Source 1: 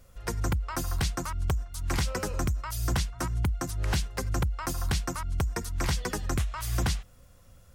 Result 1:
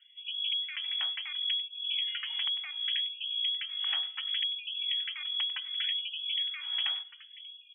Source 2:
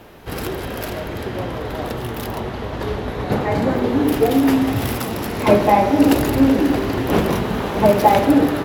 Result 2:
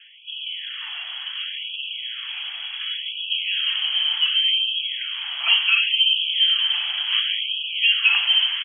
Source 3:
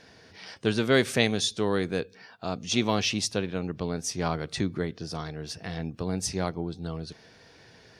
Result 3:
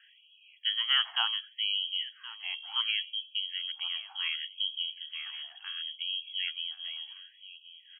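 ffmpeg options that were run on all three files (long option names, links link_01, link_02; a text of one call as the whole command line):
ffmpeg -i in.wav -filter_complex "[0:a]bandreject=frequency=322.9:width_type=h:width=4,bandreject=frequency=645.8:width_type=h:width=4,bandreject=frequency=968.7:width_type=h:width=4,lowpass=frequency=2900:width_type=q:width=0.5098,lowpass=frequency=2900:width_type=q:width=0.6013,lowpass=frequency=2900:width_type=q:width=0.9,lowpass=frequency=2900:width_type=q:width=2.563,afreqshift=-3400,asplit=2[link_01][link_02];[link_02]aecho=0:1:1072:0.168[link_03];[link_01][link_03]amix=inputs=2:normalize=0,afftfilt=real='re*gte(b*sr/1024,610*pow(2500/610,0.5+0.5*sin(2*PI*0.69*pts/sr)))':imag='im*gte(b*sr/1024,610*pow(2500/610,0.5+0.5*sin(2*PI*0.69*pts/sr)))':win_size=1024:overlap=0.75,volume=-5dB" out.wav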